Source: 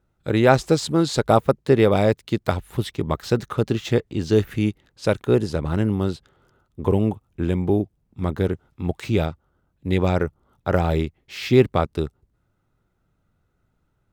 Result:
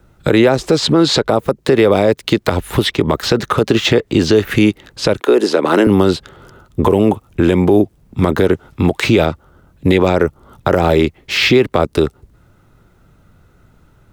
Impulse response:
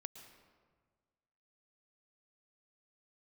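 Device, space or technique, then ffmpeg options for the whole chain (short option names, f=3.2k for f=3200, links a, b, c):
mastering chain: -filter_complex "[0:a]asettb=1/sr,asplit=3[a][b][c];[a]atrim=end=5.204[d];[b]atrim=start=5.2:end=5.87,asetpts=PTS-STARTPTS,afade=t=in:d=0.004:c=qsin,afade=t=out:st=0.666:d=0.004:c=qsin,highpass=f=290:w=0.5412,highpass=f=290:w=1.3066[e];[c]atrim=start=5.866[f];[d][e]acrossfade=d=0.004:c1=hsin:c2=qsin[g];[g][f]acrossfade=d=0.004:c1=qsin:c2=hsin,equalizer=f=770:t=o:w=0.26:g=-2,acrossover=split=250|560|4900[h][i][j][k];[h]acompressor=threshold=-36dB:ratio=4[l];[i]acompressor=threshold=-22dB:ratio=4[m];[j]acompressor=threshold=-29dB:ratio=4[n];[k]acompressor=threshold=-52dB:ratio=4[o];[l][m][n][o]amix=inputs=4:normalize=0,acompressor=threshold=-25dB:ratio=2.5,alimiter=level_in=20.5dB:limit=-1dB:release=50:level=0:latency=1,volume=-1dB"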